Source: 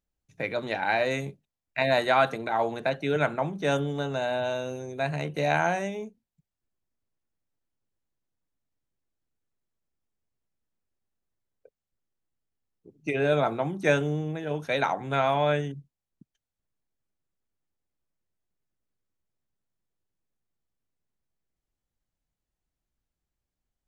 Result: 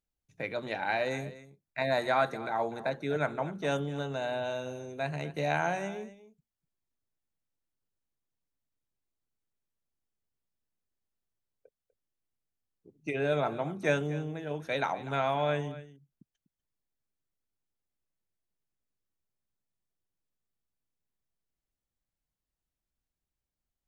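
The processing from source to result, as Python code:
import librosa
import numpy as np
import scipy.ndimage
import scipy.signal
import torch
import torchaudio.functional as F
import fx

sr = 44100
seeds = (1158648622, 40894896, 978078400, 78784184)

y = fx.peak_eq(x, sr, hz=2900.0, db=-10.5, octaves=0.32, at=(1.09, 3.37))
y = y + 10.0 ** (-16.0 / 20.0) * np.pad(y, (int(246 * sr / 1000.0), 0))[:len(y)]
y = y * 10.0 ** (-5.0 / 20.0)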